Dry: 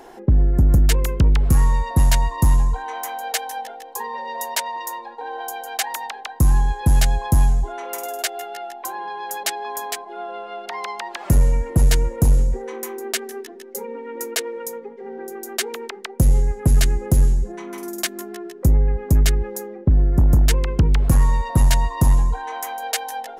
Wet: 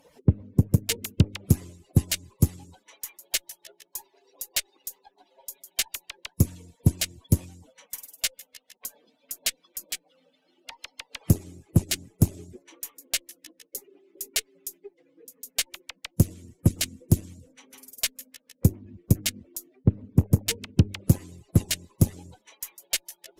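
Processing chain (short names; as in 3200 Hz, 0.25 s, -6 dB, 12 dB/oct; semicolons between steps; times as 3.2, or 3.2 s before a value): median-filter separation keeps percussive; added harmonics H 6 -24 dB, 7 -25 dB, 8 -34 dB, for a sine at -5.5 dBFS; band shelf 1100 Hz -9.5 dB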